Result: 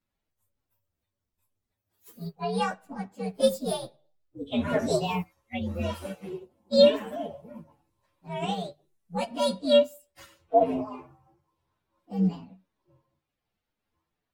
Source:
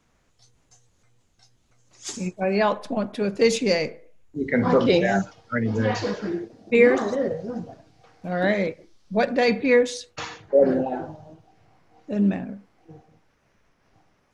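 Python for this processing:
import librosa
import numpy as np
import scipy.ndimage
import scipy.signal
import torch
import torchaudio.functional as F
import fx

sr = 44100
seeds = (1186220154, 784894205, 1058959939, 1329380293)

y = fx.partial_stretch(x, sr, pct=126)
y = fx.hum_notches(y, sr, base_hz=50, count=3)
y = fx.upward_expand(y, sr, threshold_db=-42.0, expansion=1.5)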